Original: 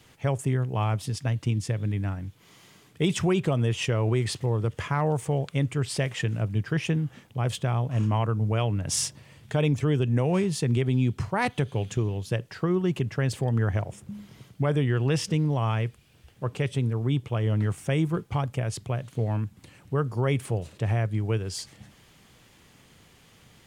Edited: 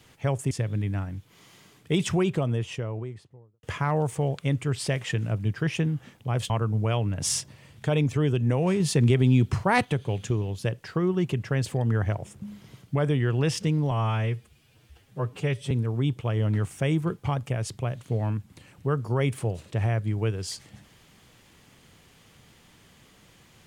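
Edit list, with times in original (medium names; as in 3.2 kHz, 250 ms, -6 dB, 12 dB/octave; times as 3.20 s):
0.51–1.61 s: delete
3.14–4.73 s: studio fade out
7.60–8.17 s: delete
10.47–11.52 s: gain +4 dB
15.58–16.78 s: stretch 1.5×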